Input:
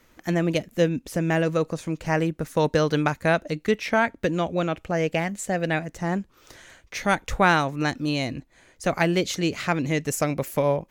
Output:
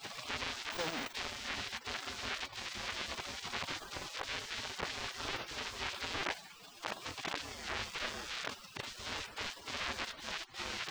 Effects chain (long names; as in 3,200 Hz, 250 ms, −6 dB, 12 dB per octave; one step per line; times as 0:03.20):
sign of each sample alone
gate on every frequency bin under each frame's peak −25 dB weak
0:00.72–0:01.13: RIAA equalisation recording
de-essing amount 50%
leveller curve on the samples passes 1
transient designer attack −1 dB, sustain +7 dB
high-frequency loss of the air 170 metres
level +2.5 dB